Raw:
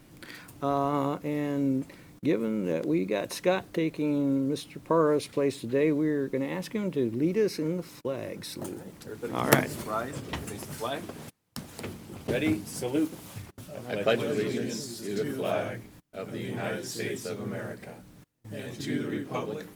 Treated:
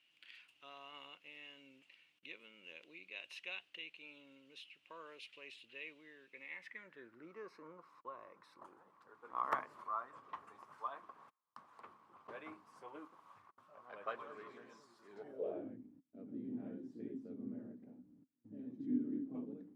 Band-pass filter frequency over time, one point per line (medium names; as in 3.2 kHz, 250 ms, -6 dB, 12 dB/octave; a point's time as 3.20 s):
band-pass filter, Q 7.9
6.21 s 2.8 kHz
7.50 s 1.1 kHz
15.09 s 1.1 kHz
15.69 s 260 Hz